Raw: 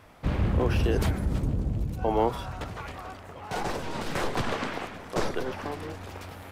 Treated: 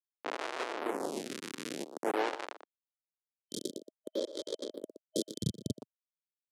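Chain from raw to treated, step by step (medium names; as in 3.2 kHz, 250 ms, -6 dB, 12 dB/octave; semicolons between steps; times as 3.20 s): peaking EQ 6.3 kHz +11 dB 0.5 oct; gated-style reverb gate 300 ms rising, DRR 9.5 dB; Schmitt trigger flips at -23 dBFS; low-pass 11 kHz 24 dB/octave; speakerphone echo 120 ms, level -8 dB; gain riding within 3 dB 0.5 s; high-pass 290 Hz 24 dB/octave, from 5.41 s 130 Hz; 3.20–5.80 s: time-frequency box 640–3100 Hz -25 dB; lamp-driven phase shifter 0.51 Hz; trim +5 dB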